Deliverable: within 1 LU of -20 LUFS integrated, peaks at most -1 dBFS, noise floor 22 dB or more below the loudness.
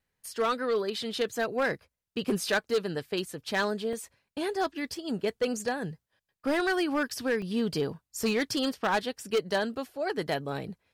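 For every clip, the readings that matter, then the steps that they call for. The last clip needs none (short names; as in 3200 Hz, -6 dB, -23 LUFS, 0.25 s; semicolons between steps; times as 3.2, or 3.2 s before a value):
clipped 1.2%; flat tops at -21.0 dBFS; dropouts 3; longest dropout 2.7 ms; loudness -30.5 LUFS; peak -21.0 dBFS; loudness target -20.0 LUFS
-> clip repair -21 dBFS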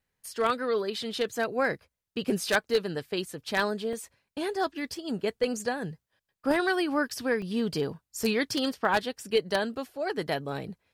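clipped 0.0%; dropouts 3; longest dropout 2.7 ms
-> interpolate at 3.93/7.42/8.23, 2.7 ms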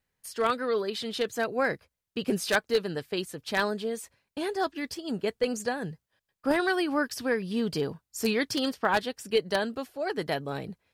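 dropouts 0; loudness -29.5 LUFS; peak -12.0 dBFS; loudness target -20.0 LUFS
-> gain +9.5 dB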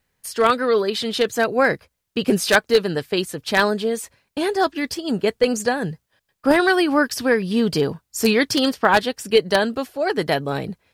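loudness -20.0 LUFS; peak -2.5 dBFS; noise floor -76 dBFS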